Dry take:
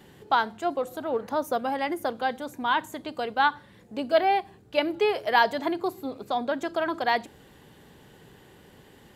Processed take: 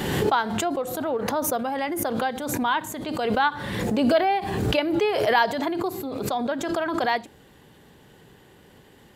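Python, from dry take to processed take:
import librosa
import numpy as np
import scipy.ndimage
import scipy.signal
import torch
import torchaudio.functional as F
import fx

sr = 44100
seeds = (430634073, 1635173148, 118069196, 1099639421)

y = fx.pre_swell(x, sr, db_per_s=31.0)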